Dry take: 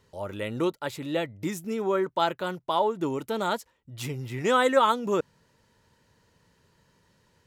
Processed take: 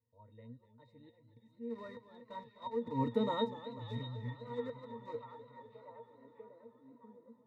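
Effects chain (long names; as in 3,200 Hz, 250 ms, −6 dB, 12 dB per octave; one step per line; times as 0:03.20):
source passing by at 0:03.00, 16 m/s, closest 1.4 metres
volume swells 408 ms
in parallel at −4.5 dB: bit-depth reduction 8 bits, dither none
on the sum: resonances in every octave A#, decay 0.12 s
on a send: echo through a band-pass that steps 646 ms, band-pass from 3,100 Hz, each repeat −0.7 octaves, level −7.5 dB
on the sum: feedback echo with a swinging delay time 249 ms, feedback 71%, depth 101 cents, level −14 dB
level +16.5 dB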